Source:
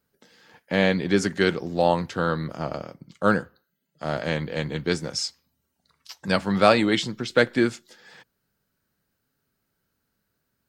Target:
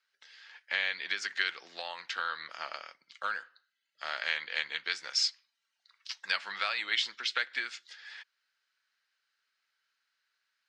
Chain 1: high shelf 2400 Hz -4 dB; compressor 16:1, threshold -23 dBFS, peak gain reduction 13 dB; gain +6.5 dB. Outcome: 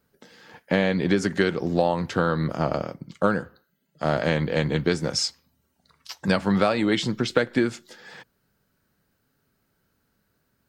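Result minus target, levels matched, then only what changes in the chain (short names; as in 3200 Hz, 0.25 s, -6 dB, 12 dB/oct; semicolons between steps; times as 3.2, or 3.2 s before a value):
4000 Hz band -8.0 dB
add after compressor: Butterworth band-pass 3000 Hz, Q 0.8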